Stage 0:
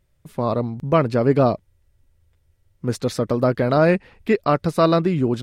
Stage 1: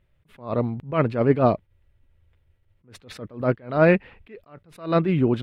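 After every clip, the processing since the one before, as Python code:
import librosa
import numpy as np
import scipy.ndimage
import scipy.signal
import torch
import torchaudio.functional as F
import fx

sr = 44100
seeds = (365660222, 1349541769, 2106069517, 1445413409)

y = fx.high_shelf_res(x, sr, hz=4100.0, db=-11.5, q=1.5)
y = fx.attack_slew(y, sr, db_per_s=160.0)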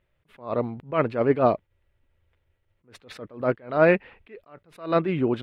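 y = fx.bass_treble(x, sr, bass_db=-8, treble_db=-5)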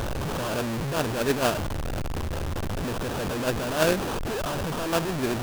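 y = fx.delta_mod(x, sr, bps=16000, step_db=-18.0)
y = fx.sample_hold(y, sr, seeds[0], rate_hz=2100.0, jitter_pct=20)
y = F.gain(torch.from_numpy(y), -4.5).numpy()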